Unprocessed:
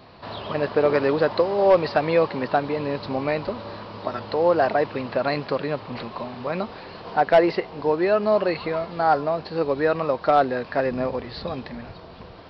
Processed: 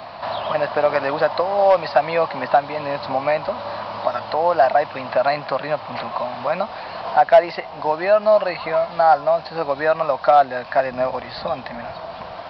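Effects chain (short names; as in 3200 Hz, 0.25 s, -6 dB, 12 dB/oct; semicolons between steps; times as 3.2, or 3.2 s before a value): resonant low shelf 530 Hz -7 dB, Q 3; three-band squash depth 40%; gain +2.5 dB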